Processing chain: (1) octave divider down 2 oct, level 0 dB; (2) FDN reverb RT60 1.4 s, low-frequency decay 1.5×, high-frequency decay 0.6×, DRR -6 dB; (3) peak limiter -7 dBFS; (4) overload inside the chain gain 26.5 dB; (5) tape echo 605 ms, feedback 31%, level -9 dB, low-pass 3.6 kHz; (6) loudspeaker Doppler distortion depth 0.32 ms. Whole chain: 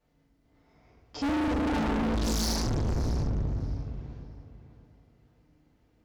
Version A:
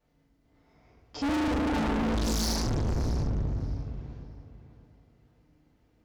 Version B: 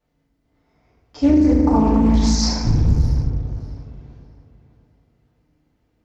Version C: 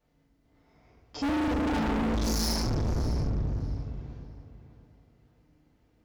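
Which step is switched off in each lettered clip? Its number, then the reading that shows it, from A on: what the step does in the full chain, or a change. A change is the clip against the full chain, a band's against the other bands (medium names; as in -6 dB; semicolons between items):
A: 3, momentary loudness spread change -2 LU; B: 4, distortion -4 dB; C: 6, momentary loudness spread change -2 LU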